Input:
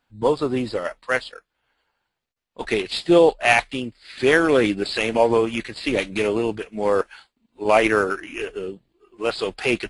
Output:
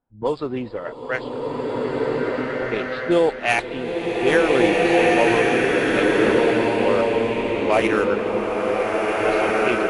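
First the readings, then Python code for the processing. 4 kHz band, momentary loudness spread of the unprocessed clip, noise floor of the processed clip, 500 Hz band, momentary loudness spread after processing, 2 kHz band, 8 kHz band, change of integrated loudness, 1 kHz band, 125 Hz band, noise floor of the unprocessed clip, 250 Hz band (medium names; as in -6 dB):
-1.0 dB, 14 LU, -33 dBFS, +2.0 dB, 10 LU, +1.5 dB, -1.0 dB, +1.0 dB, +2.5 dB, +2.5 dB, -80 dBFS, +2.5 dB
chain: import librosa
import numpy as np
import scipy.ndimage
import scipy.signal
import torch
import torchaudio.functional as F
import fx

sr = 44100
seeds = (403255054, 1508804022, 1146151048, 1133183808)

y = fx.env_lowpass(x, sr, base_hz=750.0, full_db=-12.0)
y = fx.rev_bloom(y, sr, seeds[0], attack_ms=1820, drr_db=-4.5)
y = y * 10.0 ** (-3.5 / 20.0)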